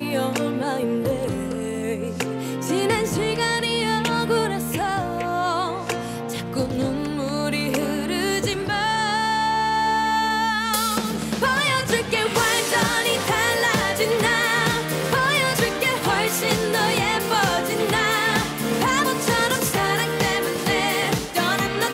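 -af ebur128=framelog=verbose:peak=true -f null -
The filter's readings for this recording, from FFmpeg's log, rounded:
Integrated loudness:
  I:         -21.5 LUFS
  Threshold: -31.5 LUFS
Loudness range:
  LRA:         4.6 LU
  Threshold: -41.3 LUFS
  LRA low:   -24.3 LUFS
  LRA high:  -19.7 LUFS
True peak:
  Peak:       -6.3 dBFS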